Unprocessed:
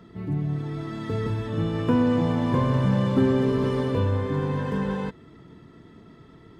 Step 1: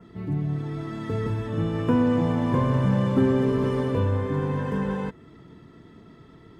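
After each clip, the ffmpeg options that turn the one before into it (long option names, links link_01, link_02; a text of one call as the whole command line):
ffmpeg -i in.wav -af "adynamicequalizer=threshold=0.00126:dfrequency=4100:dqfactor=1.8:tfrequency=4100:tqfactor=1.8:attack=5:release=100:ratio=0.375:range=3:mode=cutabove:tftype=bell" out.wav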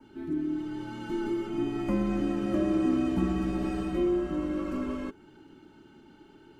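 ffmpeg -i in.wav -af "equalizer=frequency=410:width=0.66:gain=-12,afreqshift=-450" out.wav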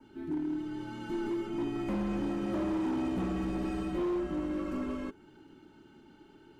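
ffmpeg -i in.wav -af "volume=26dB,asoftclip=hard,volume=-26dB,volume=-2.5dB" out.wav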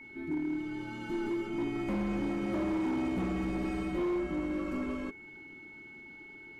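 ffmpeg -i in.wav -af "aeval=exprs='val(0)+0.00398*sin(2*PI*2200*n/s)':channel_layout=same" out.wav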